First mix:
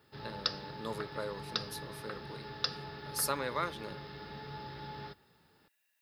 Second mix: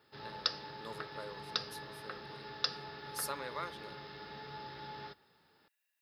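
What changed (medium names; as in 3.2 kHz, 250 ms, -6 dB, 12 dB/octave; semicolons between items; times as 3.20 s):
speech -6.0 dB; master: add bass shelf 220 Hz -10 dB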